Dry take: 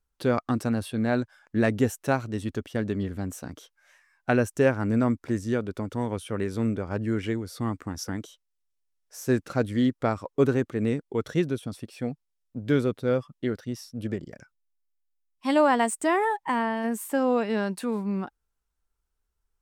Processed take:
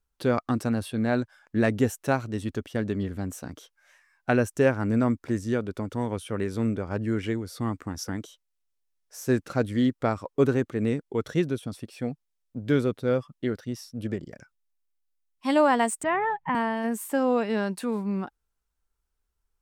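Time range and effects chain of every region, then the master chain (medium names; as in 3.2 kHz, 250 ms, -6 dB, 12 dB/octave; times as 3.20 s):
16.03–16.55 s: low-pass 2.9 kHz 24 dB/octave + resonant low shelf 220 Hz +11.5 dB, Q 3
whole clip: none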